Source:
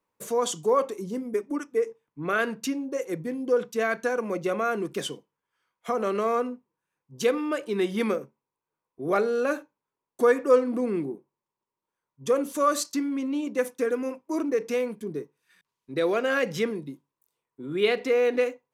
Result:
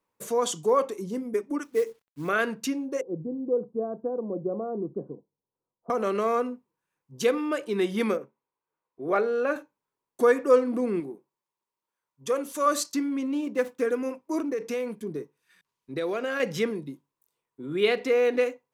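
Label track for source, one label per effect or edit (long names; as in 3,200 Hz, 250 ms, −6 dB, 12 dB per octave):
1.630000	2.290000	log-companded quantiser 6 bits
3.010000	5.900000	Bessel low-pass filter 520 Hz, order 8
8.170000	9.560000	bass and treble bass −7 dB, treble −12 dB
11.000000	12.660000	low-shelf EQ 430 Hz −8 dB
13.280000	13.800000	running median over 9 samples
14.400000	16.400000	downward compressor 2.5 to 1, threshold −27 dBFS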